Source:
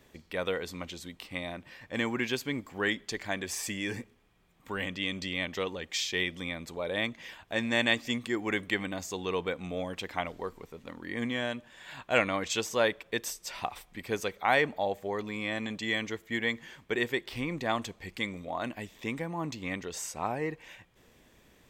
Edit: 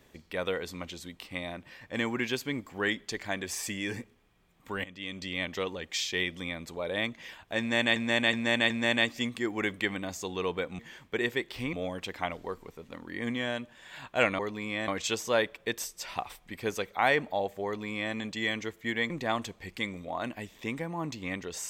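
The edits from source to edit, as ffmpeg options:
-filter_complex "[0:a]asplit=10[s0][s1][s2][s3][s4][s5][s6][s7][s8][s9];[s0]atrim=end=4.84,asetpts=PTS-STARTPTS,afade=t=out:st=4.836:d=0.004:c=hsin:silence=0.188365[s10];[s1]atrim=start=4.84:end=7.962,asetpts=PTS-STARTPTS,afade=t=in:d=0.57:silence=0.188365[s11];[s2]atrim=start=7.588:end=7.962[s12];[s3]atrim=start=7.588:end=7.962[s13];[s4]atrim=start=7.588:end=9.682[s14];[s5]atrim=start=16.558:end=17.502[s15];[s6]atrim=start=9.678:end=12.342[s16];[s7]atrim=start=15.108:end=15.602[s17];[s8]atrim=start=12.338:end=16.562[s18];[s9]atrim=start=17.498[s19];[s10][s11]concat=n=2:v=0:a=1[s20];[s20][s12]acrossfade=d=0.004:c1=hsin:c2=hsin[s21];[s21][s13]acrossfade=d=0.004:c1=hsin:c2=hsin[s22];[s22][s14]acrossfade=d=0.004:c1=hsin:c2=hsin[s23];[s23][s15]acrossfade=d=0.004:c1=hsin:c2=hsin[s24];[s24][s16]acrossfade=d=0.004:c1=hsin:c2=hsin[s25];[s25][s17]acrossfade=d=0.004:c1=hsin:c2=hsin[s26];[s26][s18]acrossfade=d=0.004:c1=hsin:c2=hsin[s27];[s27][s19]acrossfade=d=0.004:c1=hsin:c2=hsin"

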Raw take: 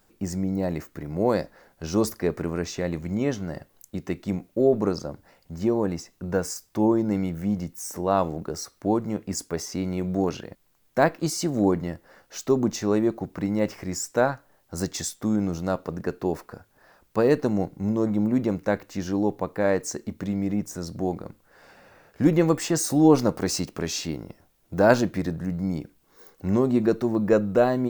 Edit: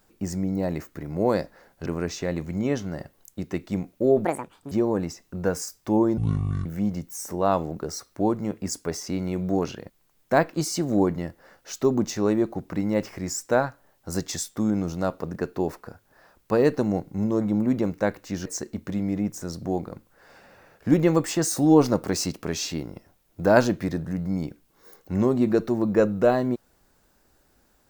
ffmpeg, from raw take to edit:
-filter_complex "[0:a]asplit=7[s0][s1][s2][s3][s4][s5][s6];[s0]atrim=end=1.862[s7];[s1]atrim=start=2.418:end=4.814[s8];[s2]atrim=start=4.81:end=5.6,asetpts=PTS-STARTPTS,asetrate=74970,aresample=44100[s9];[s3]atrim=start=5.596:end=7.064[s10];[s4]atrim=start=7.06:end=7.31,asetpts=PTS-STARTPTS,asetrate=22932,aresample=44100[s11];[s5]atrim=start=7.306:end=19.112[s12];[s6]atrim=start=19.788[s13];[s7][s8]acrossfade=d=0.004:c1=hsin:c2=hsin[s14];[s14][s9]acrossfade=d=0.004:c1=hsin:c2=hsin[s15];[s15][s10]acrossfade=d=0.004:c1=hsin:c2=hsin[s16];[s16][s11]acrossfade=d=0.004:c1=hsin:c2=hsin[s17];[s17][s12]acrossfade=d=0.004:c1=hsin:c2=hsin[s18];[s18][s13]acrossfade=d=0.004:c1=hsin:c2=hsin"

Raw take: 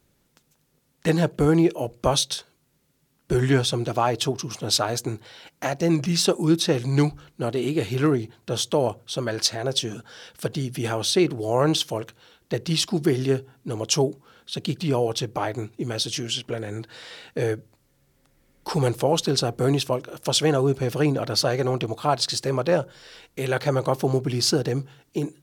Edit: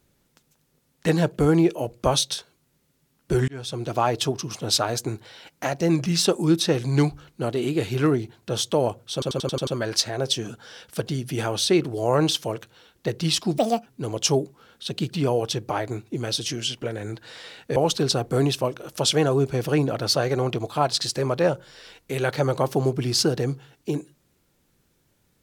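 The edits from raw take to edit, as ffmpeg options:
-filter_complex "[0:a]asplit=11[s0][s1][s2][s3][s4][s5][s6][s7][s8][s9][s10];[s0]atrim=end=3.48,asetpts=PTS-STARTPTS,afade=t=out:st=3.476:d=0.004:c=hsin[s11];[s1]atrim=start=3.48:end=9.222,asetpts=PTS-STARTPTS,afade=t=in:d=0.52[s12];[s2]atrim=start=9.128:end=9.222[s13];[s3]atrim=start=9.128:end=9.222[s14];[s4]atrim=start=9.128:end=9.222[s15];[s5]atrim=start=9.128:end=9.222[s16];[s6]atrim=start=9.128:end=9.222[s17];[s7]atrim=start=9.128:end=13.044[s18];[s8]atrim=start=13.04:end=13.53,asetpts=PTS-STARTPTS,asetrate=76734,aresample=44100[s19];[s9]atrim=start=13.526:end=17.432[s20];[s10]atrim=start=19.038[s21];[s11][s12]concat=n=2:v=0:a=1[s22];[s22][s13]acrossfade=d=0.004:c1=hsin:c2=hsin[s23];[s23][s14]acrossfade=d=0.004:c1=hsin:c2=hsin[s24];[s24][s15]acrossfade=d=0.004:c1=hsin:c2=hsin[s25];[s25][s16]acrossfade=d=0.004:c1=hsin:c2=hsin[s26];[s26][s17]acrossfade=d=0.004:c1=hsin:c2=hsin[s27];[s27][s18]acrossfade=d=0.004:c1=hsin:c2=hsin[s28];[s28][s19]acrossfade=d=0.004:c1=hsin:c2=hsin[s29];[s29][s20]acrossfade=d=0.004:c1=hsin:c2=hsin[s30];[s30][s21]acrossfade=d=0.004:c1=hsin:c2=hsin"

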